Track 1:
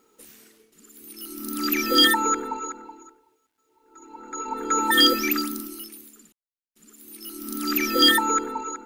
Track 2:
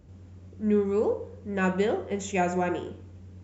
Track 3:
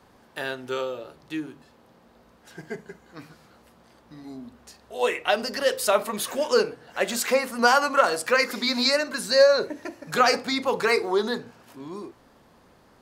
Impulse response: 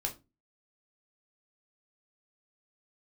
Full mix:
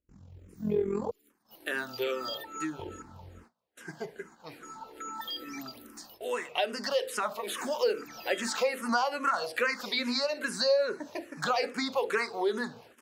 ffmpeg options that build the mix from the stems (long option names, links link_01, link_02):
-filter_complex "[0:a]equalizer=frequency=10000:width_type=o:width=0.92:gain=-7.5,acrossover=split=800|5400[link_01][link_02][link_03];[link_01]acompressor=threshold=-37dB:ratio=4[link_04];[link_02]acompressor=threshold=-23dB:ratio=4[link_05];[link_03]acompressor=threshold=-35dB:ratio=4[link_06];[link_04][link_05][link_06]amix=inputs=3:normalize=0,adelay=300,volume=-12dB[link_07];[1:a]tremolo=f=43:d=0.75,volume=1.5dB,asplit=3[link_08][link_09][link_10];[link_08]atrim=end=1.11,asetpts=PTS-STARTPTS,afade=type=out:start_time=1.106:duration=0.004:curve=hsin[link_11];[link_09]atrim=start=1.11:end=2.79,asetpts=PTS-STARTPTS,volume=0[link_12];[link_10]atrim=start=2.79,asetpts=PTS-STARTPTS,afade=type=in:duration=0.004:curve=hsin[link_13];[link_11][link_12][link_13]concat=n=3:v=0:a=1[link_14];[2:a]highpass=frequency=120:poles=1,lowshelf=frequency=160:gain=-6.5,acrossover=split=5300[link_15][link_16];[link_16]acompressor=threshold=-40dB:ratio=4:attack=1:release=60[link_17];[link_15][link_17]amix=inputs=2:normalize=0,adelay=1300,volume=2.5dB[link_18];[link_07][link_18]amix=inputs=2:normalize=0,acompressor=threshold=-26dB:ratio=2.5,volume=0dB[link_19];[link_14][link_19]amix=inputs=2:normalize=0,agate=range=-27dB:threshold=-50dB:ratio=16:detection=peak,asplit=2[link_20][link_21];[link_21]afreqshift=-2.4[link_22];[link_20][link_22]amix=inputs=2:normalize=1"